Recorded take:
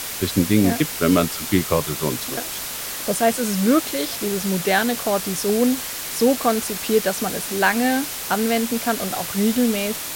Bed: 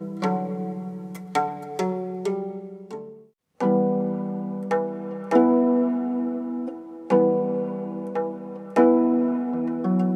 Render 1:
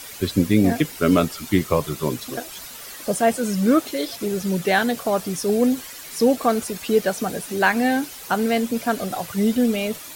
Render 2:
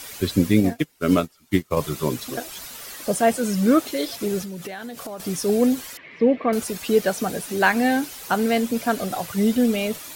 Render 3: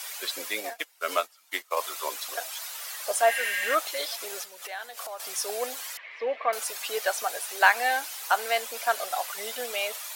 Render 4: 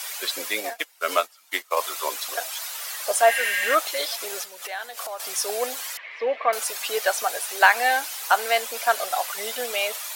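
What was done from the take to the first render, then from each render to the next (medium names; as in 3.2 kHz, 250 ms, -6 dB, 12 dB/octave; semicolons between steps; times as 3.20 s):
noise reduction 11 dB, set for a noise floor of -30 dBFS
0.60–1.77 s: upward expansion 2.5:1, over -30 dBFS; 4.42–5.20 s: compression 12:1, threshold -30 dBFS; 5.97–6.53 s: cabinet simulation 110–2600 Hz, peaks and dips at 810 Hz -9 dB, 1.4 kHz -9 dB, 2.1 kHz +8 dB
3.32–3.72 s: spectral replace 1.6–9.4 kHz before; high-pass 650 Hz 24 dB/octave
trim +4.5 dB; peak limiter -3 dBFS, peak gain reduction 2.5 dB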